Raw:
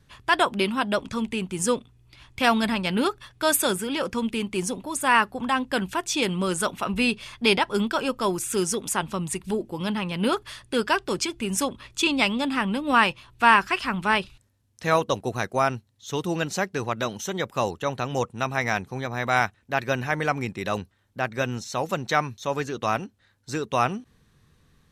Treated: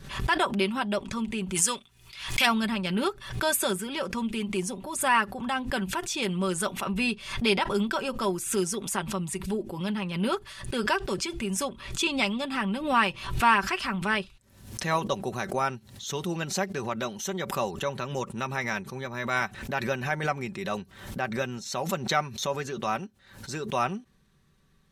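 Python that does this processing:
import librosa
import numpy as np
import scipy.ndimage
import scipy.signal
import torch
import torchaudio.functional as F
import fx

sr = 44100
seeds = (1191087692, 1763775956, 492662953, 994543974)

y = fx.tilt_shelf(x, sr, db=-9.0, hz=900.0, at=(1.54, 2.45), fade=0.02)
y = fx.notch(y, sr, hz=740.0, q=7.4, at=(17.86, 19.44))
y = y + 0.5 * np.pad(y, (int(5.2 * sr / 1000.0), 0))[:len(y)]
y = fx.pre_swell(y, sr, db_per_s=85.0)
y = F.gain(torch.from_numpy(y), -5.5).numpy()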